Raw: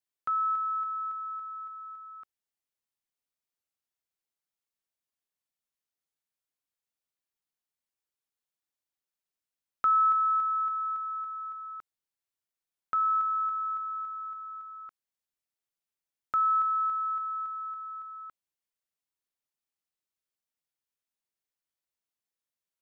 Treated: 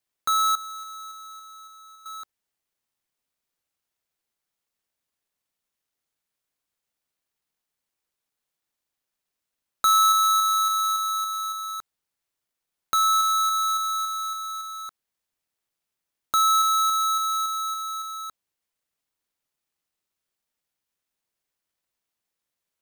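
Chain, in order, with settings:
each half-wave held at its own peak
in parallel at −1 dB: brickwall limiter −29.5 dBFS, peak gain reduction 10 dB
0:00.55–0:02.06: on the sum: tuned comb filter 370 Hz, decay 0.58 s, mix 80%

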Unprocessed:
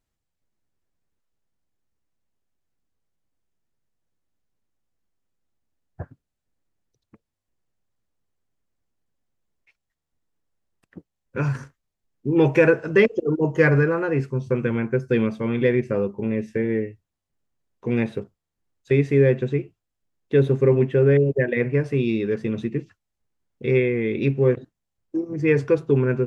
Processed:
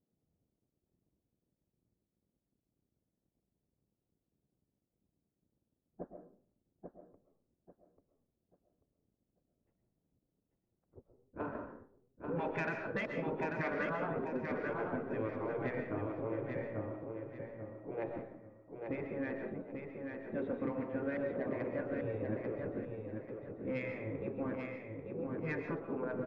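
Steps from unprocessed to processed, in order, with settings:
mu-law and A-law mismatch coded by mu
gate on every frequency bin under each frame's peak −10 dB weak
low-pass filter 1,500 Hz 6 dB per octave
low-shelf EQ 100 Hz −9 dB
low-pass that shuts in the quiet parts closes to 320 Hz, open at −20 dBFS
downward compressor 5 to 1, threshold −34 dBFS, peak gain reduction 11.5 dB
soft clipping −27 dBFS, distortion −23 dB
repeating echo 840 ms, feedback 29%, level −5 dB
convolution reverb RT60 0.45 s, pre-delay 90 ms, DRR 5.5 dB

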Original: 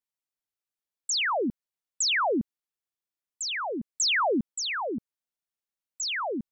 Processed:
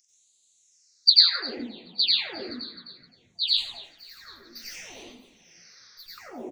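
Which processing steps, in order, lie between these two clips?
partials spread apart or drawn together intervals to 85%
downward compressor, threshold −33 dBFS, peak gain reduction 9.5 dB
flat-topped bell 5,200 Hz +16 dB 1.2 octaves
0:03.48–0:06.18: tube saturation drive 45 dB, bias 0.65
0:04.44–0:05.89: sound drawn into the spectrogram noise 420–6,300 Hz −50 dBFS
noise gate −44 dBFS, range −34 dB
upward compression, threshold −38 dBFS
echo with shifted repeats 260 ms, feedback 45%, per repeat −47 Hz, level −16 dB
dense smooth reverb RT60 0.7 s, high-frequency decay 0.5×, pre-delay 80 ms, DRR −7 dB
flanger 1.9 Hz, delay 3.5 ms, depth 2.8 ms, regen +69%
high-shelf EQ 2,800 Hz +11.5 dB
all-pass phaser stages 6, 0.63 Hz, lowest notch 750–1,500 Hz
level −1 dB

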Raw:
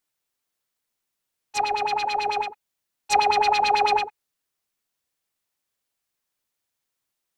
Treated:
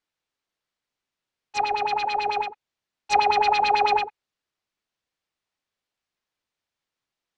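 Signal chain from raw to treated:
low-pass filter 4,800 Hz 12 dB per octave

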